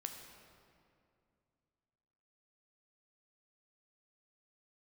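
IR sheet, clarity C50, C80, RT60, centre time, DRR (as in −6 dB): 5.5 dB, 6.0 dB, 2.4 s, 52 ms, 4.0 dB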